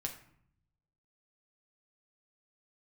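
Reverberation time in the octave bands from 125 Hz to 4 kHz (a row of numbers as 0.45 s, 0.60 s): 1.3 s, 1.0 s, 0.65 s, 0.65 s, 0.60 s, 0.40 s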